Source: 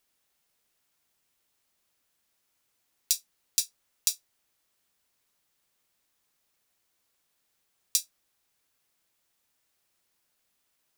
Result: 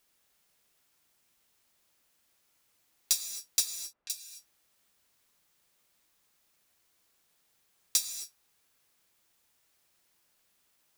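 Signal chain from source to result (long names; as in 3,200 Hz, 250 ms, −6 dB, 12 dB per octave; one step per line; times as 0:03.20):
0:03.65–0:04.10: low-pass filter 1,300 Hz 12 dB per octave
soft clipping −18 dBFS, distortion −7 dB
reverb whose tail is shaped and stops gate 290 ms flat, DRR 7.5 dB
level +3 dB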